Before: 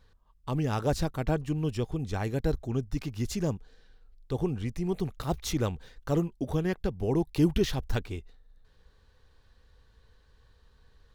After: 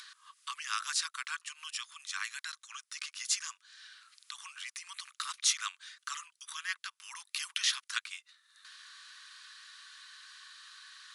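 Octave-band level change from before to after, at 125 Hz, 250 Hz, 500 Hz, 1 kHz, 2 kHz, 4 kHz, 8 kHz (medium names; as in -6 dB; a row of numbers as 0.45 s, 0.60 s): under -40 dB, under -40 dB, under -40 dB, -4.5 dB, +5.0 dB, +7.5 dB, +9.5 dB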